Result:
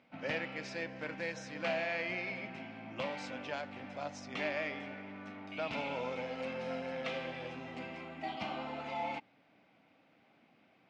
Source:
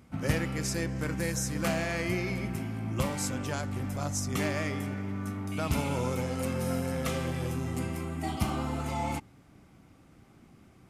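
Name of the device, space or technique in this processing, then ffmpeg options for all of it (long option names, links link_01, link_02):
phone earpiece: -af "highpass=350,equalizer=frequency=370:width_type=q:width=4:gain=-9,equalizer=frequency=630:width_type=q:width=4:gain=3,equalizer=frequency=1200:width_type=q:width=4:gain=-7,equalizer=frequency=2500:width_type=q:width=4:gain=4,lowpass=frequency=4100:width=0.5412,lowpass=frequency=4100:width=1.3066,volume=-3dB"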